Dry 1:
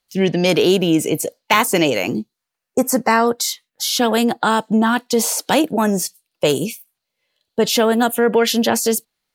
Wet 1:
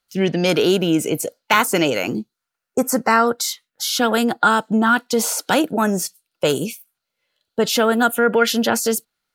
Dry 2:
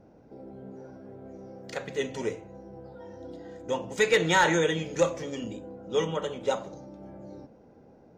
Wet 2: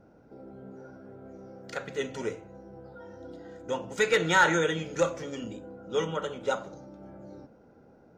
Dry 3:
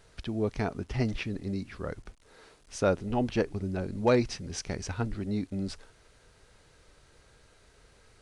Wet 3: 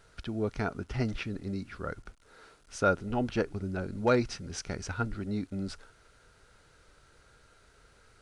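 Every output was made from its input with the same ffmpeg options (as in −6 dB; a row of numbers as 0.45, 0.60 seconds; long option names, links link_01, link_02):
-af "equalizer=frequency=1400:width_type=o:width=0.2:gain=11,volume=-2dB"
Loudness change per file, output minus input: −1.0, −1.0, −1.5 LU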